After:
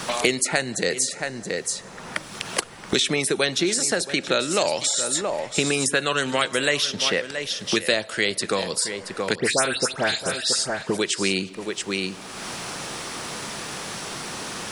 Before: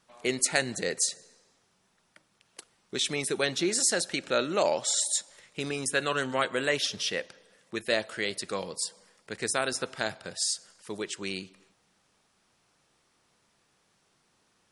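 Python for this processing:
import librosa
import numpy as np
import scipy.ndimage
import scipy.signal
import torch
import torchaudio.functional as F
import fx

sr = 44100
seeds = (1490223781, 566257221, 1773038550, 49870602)

p1 = fx.dispersion(x, sr, late='highs', ms=112.0, hz=2300.0, at=(9.35, 10.97))
p2 = p1 + fx.echo_single(p1, sr, ms=675, db=-16.0, dry=0)
p3 = fx.band_squash(p2, sr, depth_pct=100)
y = F.gain(torch.from_numpy(p3), 7.0).numpy()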